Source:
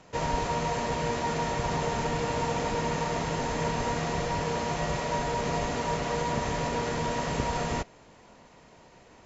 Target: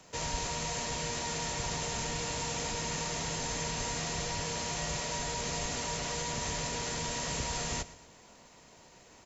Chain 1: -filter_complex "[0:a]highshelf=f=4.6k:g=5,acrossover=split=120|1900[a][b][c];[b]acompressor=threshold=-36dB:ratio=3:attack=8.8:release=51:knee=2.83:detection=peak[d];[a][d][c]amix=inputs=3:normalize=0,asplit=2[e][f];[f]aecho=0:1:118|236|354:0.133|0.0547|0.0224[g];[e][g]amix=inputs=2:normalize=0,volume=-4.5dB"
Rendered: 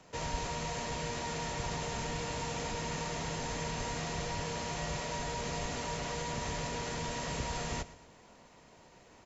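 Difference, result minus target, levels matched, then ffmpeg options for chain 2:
8000 Hz band -4.5 dB
-filter_complex "[0:a]highshelf=f=4.6k:g=16,acrossover=split=120|1900[a][b][c];[b]acompressor=threshold=-36dB:ratio=3:attack=8.8:release=51:knee=2.83:detection=peak[d];[a][d][c]amix=inputs=3:normalize=0,asplit=2[e][f];[f]aecho=0:1:118|236|354:0.133|0.0547|0.0224[g];[e][g]amix=inputs=2:normalize=0,volume=-4.5dB"

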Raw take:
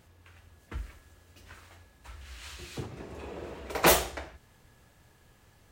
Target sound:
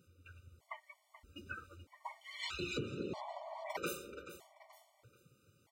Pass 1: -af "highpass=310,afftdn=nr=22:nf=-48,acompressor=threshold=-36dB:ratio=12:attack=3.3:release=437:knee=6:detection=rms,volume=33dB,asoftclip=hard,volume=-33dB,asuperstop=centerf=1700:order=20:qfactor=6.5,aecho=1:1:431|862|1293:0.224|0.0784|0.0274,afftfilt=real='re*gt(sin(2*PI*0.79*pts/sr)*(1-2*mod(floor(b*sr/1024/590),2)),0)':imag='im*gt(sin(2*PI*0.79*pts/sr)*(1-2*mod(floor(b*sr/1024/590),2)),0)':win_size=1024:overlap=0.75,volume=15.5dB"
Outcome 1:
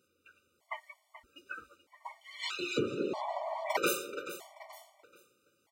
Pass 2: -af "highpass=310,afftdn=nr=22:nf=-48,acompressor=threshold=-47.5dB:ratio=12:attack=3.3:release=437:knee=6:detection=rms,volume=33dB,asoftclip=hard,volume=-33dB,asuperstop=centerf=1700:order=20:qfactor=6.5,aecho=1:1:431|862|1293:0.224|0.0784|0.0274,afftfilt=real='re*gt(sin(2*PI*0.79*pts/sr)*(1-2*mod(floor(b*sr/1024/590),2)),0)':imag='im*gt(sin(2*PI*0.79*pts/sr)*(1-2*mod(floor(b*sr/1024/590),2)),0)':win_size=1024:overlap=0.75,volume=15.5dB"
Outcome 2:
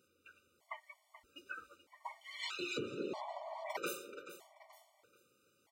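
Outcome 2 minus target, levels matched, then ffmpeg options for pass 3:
125 Hz band -9.5 dB
-af "highpass=150,afftdn=nr=22:nf=-48,acompressor=threshold=-47.5dB:ratio=12:attack=3.3:release=437:knee=6:detection=rms,volume=33dB,asoftclip=hard,volume=-33dB,asuperstop=centerf=1700:order=20:qfactor=6.5,aecho=1:1:431|862|1293:0.224|0.0784|0.0274,afftfilt=real='re*gt(sin(2*PI*0.79*pts/sr)*(1-2*mod(floor(b*sr/1024/590),2)),0)':imag='im*gt(sin(2*PI*0.79*pts/sr)*(1-2*mod(floor(b*sr/1024/590),2)),0)':win_size=1024:overlap=0.75,volume=15.5dB"

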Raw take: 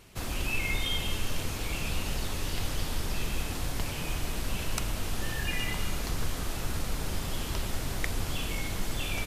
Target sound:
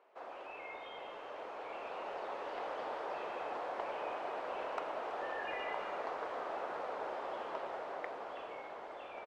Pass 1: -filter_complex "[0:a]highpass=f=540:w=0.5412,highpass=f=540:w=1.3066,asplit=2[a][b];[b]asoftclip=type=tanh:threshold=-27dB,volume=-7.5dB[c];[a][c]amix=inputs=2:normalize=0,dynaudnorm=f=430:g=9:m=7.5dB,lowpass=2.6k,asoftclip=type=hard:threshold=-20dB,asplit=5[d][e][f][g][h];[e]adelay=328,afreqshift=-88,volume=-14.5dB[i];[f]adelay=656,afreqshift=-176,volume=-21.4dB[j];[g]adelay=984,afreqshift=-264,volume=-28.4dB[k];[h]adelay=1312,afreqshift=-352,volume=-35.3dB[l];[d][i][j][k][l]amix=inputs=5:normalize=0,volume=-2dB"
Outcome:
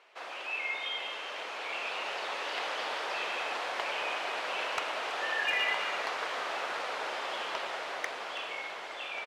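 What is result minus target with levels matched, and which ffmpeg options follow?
2000 Hz band +5.5 dB; soft clip: distortion -8 dB
-filter_complex "[0:a]highpass=f=540:w=0.5412,highpass=f=540:w=1.3066,asplit=2[a][b];[b]asoftclip=type=tanh:threshold=-36dB,volume=-7.5dB[c];[a][c]amix=inputs=2:normalize=0,dynaudnorm=f=430:g=9:m=7.5dB,lowpass=850,asoftclip=type=hard:threshold=-20dB,asplit=5[d][e][f][g][h];[e]adelay=328,afreqshift=-88,volume=-14.5dB[i];[f]adelay=656,afreqshift=-176,volume=-21.4dB[j];[g]adelay=984,afreqshift=-264,volume=-28.4dB[k];[h]adelay=1312,afreqshift=-352,volume=-35.3dB[l];[d][i][j][k][l]amix=inputs=5:normalize=0,volume=-2dB"

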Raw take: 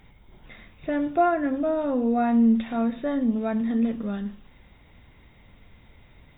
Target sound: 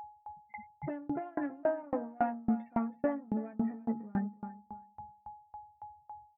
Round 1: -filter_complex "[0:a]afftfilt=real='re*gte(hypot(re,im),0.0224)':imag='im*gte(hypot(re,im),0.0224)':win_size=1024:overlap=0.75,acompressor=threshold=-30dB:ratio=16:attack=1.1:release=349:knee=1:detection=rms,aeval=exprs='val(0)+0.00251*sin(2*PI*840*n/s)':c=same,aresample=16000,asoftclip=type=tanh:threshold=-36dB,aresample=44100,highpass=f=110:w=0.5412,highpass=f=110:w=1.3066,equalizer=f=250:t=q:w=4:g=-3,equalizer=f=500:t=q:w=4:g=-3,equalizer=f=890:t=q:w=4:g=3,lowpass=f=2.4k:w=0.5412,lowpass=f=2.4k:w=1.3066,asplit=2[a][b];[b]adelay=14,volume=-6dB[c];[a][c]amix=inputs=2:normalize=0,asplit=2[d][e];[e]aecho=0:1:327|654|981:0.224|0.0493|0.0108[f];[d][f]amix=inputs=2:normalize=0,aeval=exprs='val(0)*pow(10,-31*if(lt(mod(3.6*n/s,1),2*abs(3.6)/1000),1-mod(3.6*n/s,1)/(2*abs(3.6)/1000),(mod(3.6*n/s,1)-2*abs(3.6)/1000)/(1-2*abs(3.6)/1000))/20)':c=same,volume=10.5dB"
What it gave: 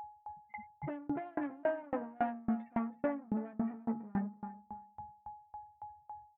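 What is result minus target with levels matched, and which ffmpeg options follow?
soft clip: distortion +8 dB
-filter_complex "[0:a]afftfilt=real='re*gte(hypot(re,im),0.0224)':imag='im*gte(hypot(re,im),0.0224)':win_size=1024:overlap=0.75,acompressor=threshold=-30dB:ratio=16:attack=1.1:release=349:knee=1:detection=rms,aeval=exprs='val(0)+0.00251*sin(2*PI*840*n/s)':c=same,aresample=16000,asoftclip=type=tanh:threshold=-30dB,aresample=44100,highpass=f=110:w=0.5412,highpass=f=110:w=1.3066,equalizer=f=250:t=q:w=4:g=-3,equalizer=f=500:t=q:w=4:g=-3,equalizer=f=890:t=q:w=4:g=3,lowpass=f=2.4k:w=0.5412,lowpass=f=2.4k:w=1.3066,asplit=2[a][b];[b]adelay=14,volume=-6dB[c];[a][c]amix=inputs=2:normalize=0,asplit=2[d][e];[e]aecho=0:1:327|654|981:0.224|0.0493|0.0108[f];[d][f]amix=inputs=2:normalize=0,aeval=exprs='val(0)*pow(10,-31*if(lt(mod(3.6*n/s,1),2*abs(3.6)/1000),1-mod(3.6*n/s,1)/(2*abs(3.6)/1000),(mod(3.6*n/s,1)-2*abs(3.6)/1000)/(1-2*abs(3.6)/1000))/20)':c=same,volume=10.5dB"

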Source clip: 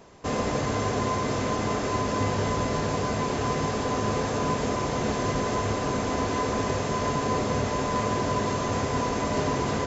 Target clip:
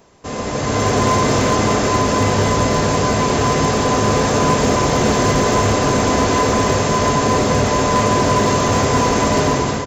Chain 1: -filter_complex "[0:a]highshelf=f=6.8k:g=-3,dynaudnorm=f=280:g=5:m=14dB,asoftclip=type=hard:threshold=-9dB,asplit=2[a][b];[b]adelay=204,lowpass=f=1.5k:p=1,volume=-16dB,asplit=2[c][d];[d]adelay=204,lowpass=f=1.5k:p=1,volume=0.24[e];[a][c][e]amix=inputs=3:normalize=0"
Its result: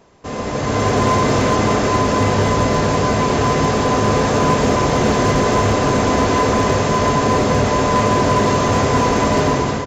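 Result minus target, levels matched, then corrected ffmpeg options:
8000 Hz band -4.5 dB
-filter_complex "[0:a]highshelf=f=6.8k:g=7,dynaudnorm=f=280:g=5:m=14dB,asoftclip=type=hard:threshold=-9dB,asplit=2[a][b];[b]adelay=204,lowpass=f=1.5k:p=1,volume=-16dB,asplit=2[c][d];[d]adelay=204,lowpass=f=1.5k:p=1,volume=0.24[e];[a][c][e]amix=inputs=3:normalize=0"

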